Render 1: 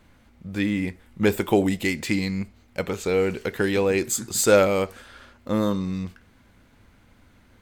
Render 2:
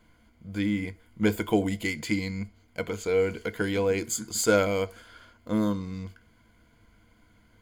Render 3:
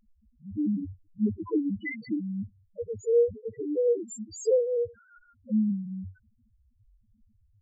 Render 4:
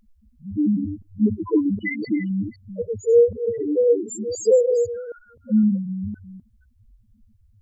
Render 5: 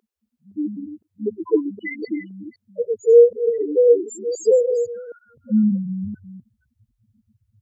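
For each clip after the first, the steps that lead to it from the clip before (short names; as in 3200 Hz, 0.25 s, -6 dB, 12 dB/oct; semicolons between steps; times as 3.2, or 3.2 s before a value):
ripple EQ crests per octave 1.8, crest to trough 10 dB; gain -6 dB
loudest bins only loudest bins 1; gain +6.5 dB
reverse delay 0.256 s, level -11.5 dB; gain +7.5 dB
high-pass sweep 410 Hz -> 130 Hz, 4.26–5.3; gain -3 dB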